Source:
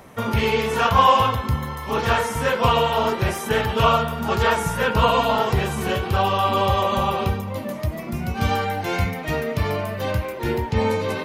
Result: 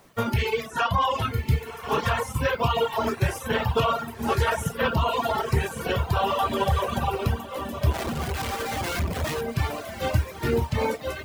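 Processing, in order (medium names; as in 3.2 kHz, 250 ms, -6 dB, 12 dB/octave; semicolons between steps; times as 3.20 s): reverb removal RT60 1.4 s; bit crusher 8-bit; 0.70–1.33 s: low-pass 12 kHz 12 dB/octave; on a send at -6 dB: reverberation RT60 0.45 s, pre-delay 6 ms; on the sum: peak limiter -14 dBFS, peak gain reduction 11 dB; 7.91–9.41 s: Schmitt trigger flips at -41 dBFS; echo that smears into a reverb 1105 ms, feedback 55%, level -7 dB; reverb removal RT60 0.98 s; upward expansion 1.5:1, over -44 dBFS; trim +2 dB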